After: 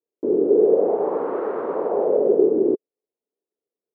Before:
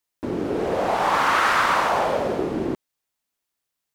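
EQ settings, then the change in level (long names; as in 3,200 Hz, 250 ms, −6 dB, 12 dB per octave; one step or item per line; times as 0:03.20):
high-pass filter 280 Hz 12 dB per octave
low-pass with resonance 430 Hz, resonance Q 5.2
high-frequency loss of the air 59 metres
0.0 dB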